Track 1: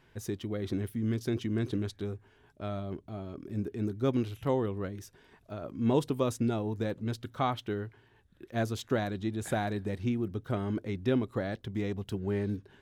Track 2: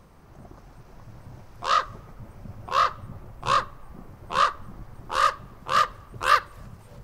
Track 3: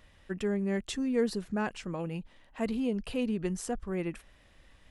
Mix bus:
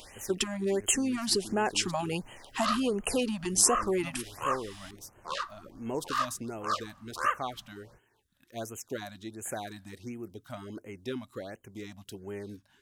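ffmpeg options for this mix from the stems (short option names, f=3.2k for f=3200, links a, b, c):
-filter_complex "[0:a]volume=-5dB[a];[1:a]aemphasis=mode=reproduction:type=50fm,adelay=950,volume=-9dB[b];[2:a]equalizer=f=400:t=o:w=0.33:g=6,equalizer=f=800:t=o:w=0.33:g=6,equalizer=f=3.15k:t=o:w=0.33:g=5,equalizer=f=5k:t=o:w=0.33:g=4,aeval=exprs='0.188*sin(PI/2*1.58*val(0)/0.188)':c=same,volume=2.5dB[c];[a][c]amix=inputs=2:normalize=0,acompressor=threshold=-23dB:ratio=6,volume=0dB[d];[b][d]amix=inputs=2:normalize=0,bass=f=250:g=-9,treble=f=4k:g=11,afftfilt=real='re*(1-between(b*sr/1024,380*pow(4600/380,0.5+0.5*sin(2*PI*1.4*pts/sr))/1.41,380*pow(4600/380,0.5+0.5*sin(2*PI*1.4*pts/sr))*1.41))':imag='im*(1-between(b*sr/1024,380*pow(4600/380,0.5+0.5*sin(2*PI*1.4*pts/sr))/1.41,380*pow(4600/380,0.5+0.5*sin(2*PI*1.4*pts/sr))*1.41))':win_size=1024:overlap=0.75"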